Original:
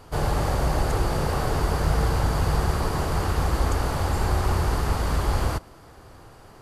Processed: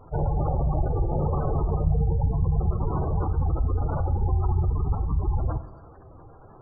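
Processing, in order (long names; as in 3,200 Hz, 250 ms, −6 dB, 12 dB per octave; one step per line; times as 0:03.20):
gate on every frequency bin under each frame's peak −15 dB strong
reverb whose tail is shaped and stops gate 330 ms falling, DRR 10 dB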